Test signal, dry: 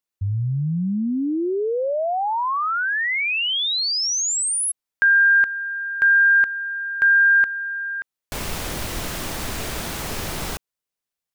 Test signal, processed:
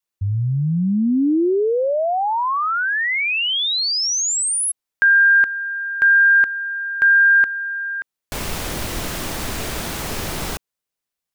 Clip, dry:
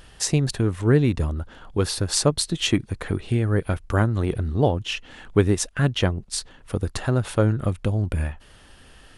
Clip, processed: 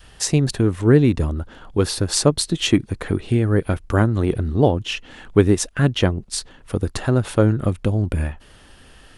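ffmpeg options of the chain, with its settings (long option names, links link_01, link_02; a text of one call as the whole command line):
ffmpeg -i in.wav -af "adynamicequalizer=threshold=0.0224:dfrequency=300:dqfactor=1:tfrequency=300:tqfactor=1:attack=5:release=100:ratio=0.375:range=2:mode=boostabove:tftype=bell,volume=2dB" out.wav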